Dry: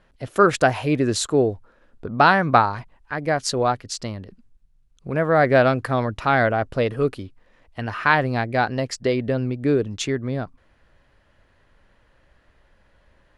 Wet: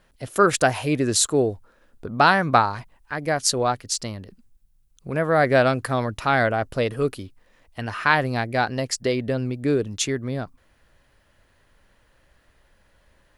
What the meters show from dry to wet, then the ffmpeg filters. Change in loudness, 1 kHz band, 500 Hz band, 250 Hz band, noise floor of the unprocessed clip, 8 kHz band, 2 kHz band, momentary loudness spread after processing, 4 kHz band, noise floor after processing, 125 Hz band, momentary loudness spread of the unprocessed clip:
-1.0 dB, -1.5 dB, -2.0 dB, -2.0 dB, -60 dBFS, +6.5 dB, -1.0 dB, 16 LU, +2.5 dB, -62 dBFS, -2.0 dB, 16 LU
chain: -af "aemphasis=mode=production:type=50fm,volume=-1.5dB"

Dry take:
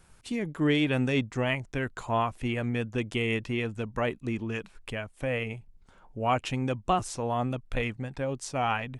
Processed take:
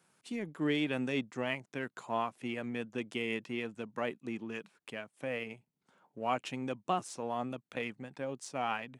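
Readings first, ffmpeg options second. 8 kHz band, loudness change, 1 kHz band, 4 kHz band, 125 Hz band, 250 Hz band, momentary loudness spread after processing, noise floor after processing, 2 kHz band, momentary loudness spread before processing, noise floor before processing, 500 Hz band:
-7.5 dB, -7.0 dB, -6.5 dB, -6.5 dB, -14.5 dB, -7.0 dB, 9 LU, -83 dBFS, -6.5 dB, 9 LU, -58 dBFS, -6.5 dB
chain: -filter_complex "[0:a]highpass=f=160:w=0.5412,highpass=f=160:w=1.3066,asplit=2[a][b];[b]aeval=exprs='sgn(val(0))*max(abs(val(0))-0.0126,0)':c=same,volume=-12dB[c];[a][c]amix=inputs=2:normalize=0,volume=-8dB"

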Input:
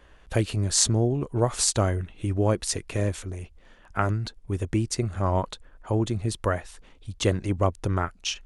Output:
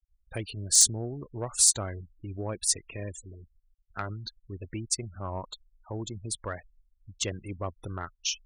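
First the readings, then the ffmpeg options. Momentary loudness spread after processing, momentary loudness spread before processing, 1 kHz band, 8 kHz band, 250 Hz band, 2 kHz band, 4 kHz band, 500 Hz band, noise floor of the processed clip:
20 LU, 12 LU, -10.0 dB, +3.5 dB, -11.5 dB, -7.5 dB, -0.5 dB, -11.5 dB, -70 dBFS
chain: -af "afftfilt=real='re*gte(hypot(re,im),0.0224)':imag='im*gte(hypot(re,im),0.0224)':win_size=1024:overlap=0.75,acontrast=46,crystalizer=i=5.5:c=0,volume=-17.5dB"

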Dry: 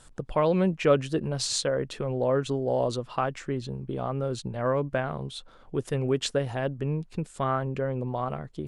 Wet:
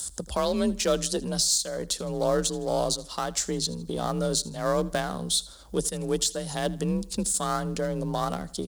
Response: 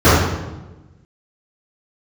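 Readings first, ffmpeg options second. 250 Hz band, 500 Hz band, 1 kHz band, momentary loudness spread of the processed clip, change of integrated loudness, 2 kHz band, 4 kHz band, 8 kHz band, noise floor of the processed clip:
+0.5 dB, -1.5 dB, 0.0 dB, 5 LU, +1.0 dB, -1.0 dB, +6.5 dB, +11.5 dB, -46 dBFS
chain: -filter_complex "[0:a]aeval=exprs='if(lt(val(0),0),0.708*val(0),val(0))':c=same,acrossover=split=2100[a][b];[b]aexciter=amount=6.4:drive=8.8:freq=3.6k[c];[a][c]amix=inputs=2:normalize=0,alimiter=limit=-18dB:level=0:latency=1:release=450,acompressor=mode=upward:threshold=-41dB:ratio=2.5,aecho=1:1:80|160|240:0.0944|0.0415|0.0183,afreqshift=35,volume=3.5dB"

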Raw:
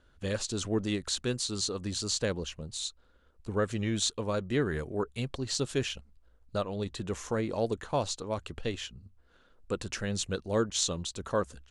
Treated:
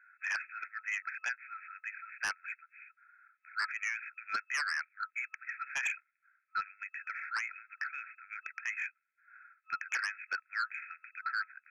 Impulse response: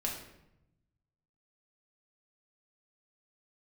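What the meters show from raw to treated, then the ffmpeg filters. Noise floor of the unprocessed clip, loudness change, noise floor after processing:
-64 dBFS, -5.0 dB, -80 dBFS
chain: -af "afftfilt=real='re*between(b*sr/4096,1300,2600)':imag='im*between(b*sr/4096,1300,2600)':win_size=4096:overlap=0.75,aeval=exprs='0.0501*sin(PI/2*3.16*val(0)/0.0501)':c=same,volume=-2dB"

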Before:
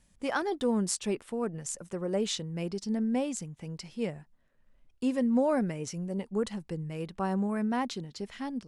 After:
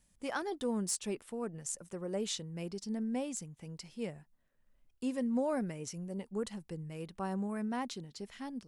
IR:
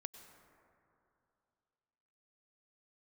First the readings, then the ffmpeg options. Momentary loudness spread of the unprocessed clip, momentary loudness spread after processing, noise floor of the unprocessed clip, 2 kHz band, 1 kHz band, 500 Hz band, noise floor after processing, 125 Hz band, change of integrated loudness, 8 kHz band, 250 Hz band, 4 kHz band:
10 LU, 11 LU, -66 dBFS, -6.0 dB, -6.5 dB, -6.5 dB, -72 dBFS, -6.5 dB, -6.0 dB, -2.5 dB, -6.5 dB, -5.0 dB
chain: -filter_complex "[0:a]highshelf=f=8k:g=9,acrossover=split=2800[a][b];[b]asoftclip=type=hard:threshold=-18dB[c];[a][c]amix=inputs=2:normalize=0,volume=-6.5dB"

